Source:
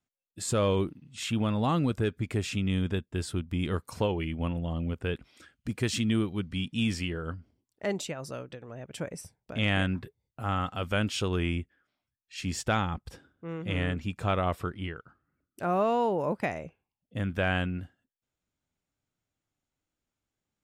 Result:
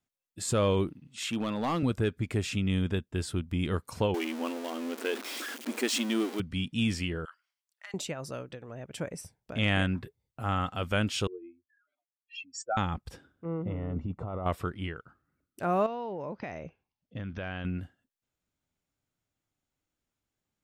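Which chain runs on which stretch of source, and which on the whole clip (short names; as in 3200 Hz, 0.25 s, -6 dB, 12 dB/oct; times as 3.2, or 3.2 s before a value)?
1.07–1.83 HPF 210 Hz + hard clip -24 dBFS
4.14–6.4 zero-crossing step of -32.5 dBFS + brick-wall FIR high-pass 220 Hz
7.25–7.94 HPF 1200 Hz 24 dB/oct + compressor, threshold -41 dBFS
11.27–12.77 spectral contrast raised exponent 3.6 + inverse Chebyshev high-pass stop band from 190 Hz + dynamic EQ 6300 Hz, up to -3 dB, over -46 dBFS, Q 0.93
13.45–14.46 polynomial smoothing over 65 samples + negative-ratio compressor -33 dBFS
15.86–17.65 compressor 4:1, threshold -34 dBFS + brick-wall FIR low-pass 6500 Hz
whole clip: dry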